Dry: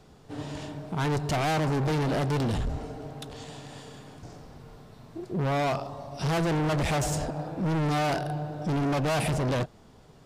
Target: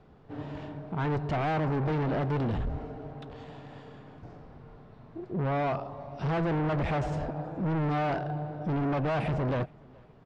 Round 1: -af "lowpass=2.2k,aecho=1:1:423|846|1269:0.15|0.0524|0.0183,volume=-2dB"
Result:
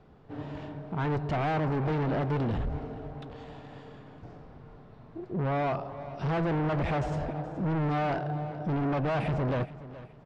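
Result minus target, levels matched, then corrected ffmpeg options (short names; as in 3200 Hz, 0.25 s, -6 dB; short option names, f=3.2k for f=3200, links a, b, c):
echo-to-direct +11 dB
-af "lowpass=2.2k,aecho=1:1:423|846:0.0422|0.0148,volume=-2dB"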